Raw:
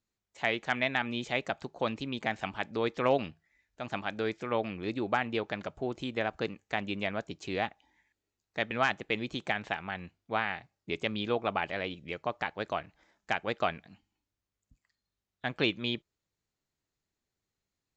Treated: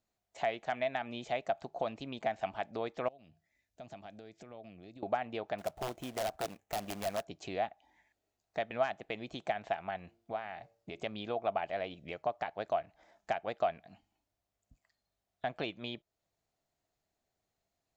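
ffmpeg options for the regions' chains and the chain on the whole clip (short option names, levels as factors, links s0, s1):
-filter_complex "[0:a]asettb=1/sr,asplit=3[s0][s1][s2];[s0]atrim=end=3.084[s3];[s1]atrim=start=3.08:end=5.03,asetpts=PTS-STARTPTS,afade=t=in:d=0.004:c=qsin,afade=t=out:st=1.946:d=0.004:c=qsin,highpass=68,equalizer=f=1100:w=0.43:g=-11.5,acompressor=threshold=0.00316:ratio=6:attack=3.2:release=140:knee=1:detection=peak[s4];[s2]atrim=start=5.026[s5];[s3][s4]acrossfade=d=0.004:c1=hsin:c2=qsin[s6];[s6][s5]acrossfade=d=0.004:c1=qsin:c2=hsin,asettb=1/sr,asplit=3[s7][s8][s9];[s7]atrim=end=5.584[s10];[s8]atrim=start=5.58:end=7.25,asetpts=PTS-STARTPTS,afade=t=in:d=0.004:c=qsin,afade=t=out:st=1.666:d=0.004:c=qsin,equalizer=f=4700:t=o:w=0.42:g=-14,aeval=exprs='(mod(17.8*val(0)+1,2)-1)/17.8':c=same,acrusher=bits=2:mode=log:mix=0:aa=0.000001[s11];[s9]atrim=start=7.246[s12];[s10][s11]acrossfade=d=0.004:c1=hsin:c2=qsin[s13];[s13][s12]acrossfade=d=0.004:c1=qsin:c2=hsin,asettb=1/sr,asplit=3[s14][s15][s16];[s14]atrim=end=9.974[s17];[s15]atrim=start=9.97:end=11,asetpts=PTS-STARTPTS,afade=t=in:d=0.004:c=qsin,afade=t=out:st=1.026:d=0.004:c=qsin,bandreject=f=114.7:t=h:w=4,bandreject=f=229.4:t=h:w=4,bandreject=f=344.1:t=h:w=4,bandreject=f=458.8:t=h:w=4,bandreject=f=573.5:t=h:w=4,acompressor=threshold=0.00794:ratio=2:attack=3.2:release=140:knee=1:detection=peak[s18];[s16]atrim=start=10.996[s19];[s17][s18]acrossfade=d=0.004:c1=hsin:c2=qsin[s20];[s20][s19]acrossfade=d=0.004:c1=qsin:c2=hsin,acompressor=threshold=0.00562:ratio=2,equalizer=f=680:w=3:g=14.5"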